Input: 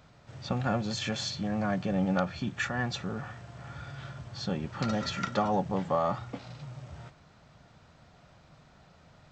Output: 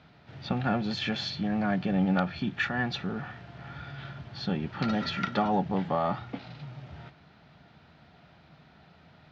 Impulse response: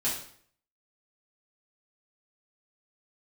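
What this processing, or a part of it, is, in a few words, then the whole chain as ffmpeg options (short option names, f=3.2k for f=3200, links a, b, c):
guitar cabinet: -af "highpass=80,equalizer=f=110:t=q:w=4:g=-7,equalizer=f=540:t=q:w=4:g=-7,equalizer=f=1.1k:t=q:w=4:g=-6,lowpass=f=4.3k:w=0.5412,lowpass=f=4.3k:w=1.3066,volume=3.5dB"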